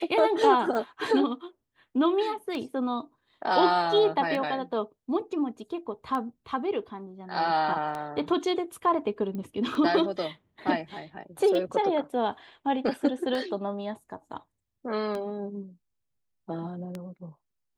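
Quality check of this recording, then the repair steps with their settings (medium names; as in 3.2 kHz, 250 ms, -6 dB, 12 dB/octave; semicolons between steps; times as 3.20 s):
tick 33 1/3 rpm -21 dBFS
9.35 s: pop -26 dBFS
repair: de-click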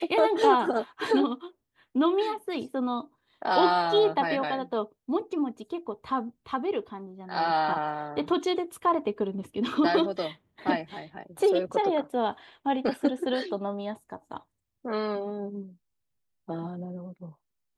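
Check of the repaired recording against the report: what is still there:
nothing left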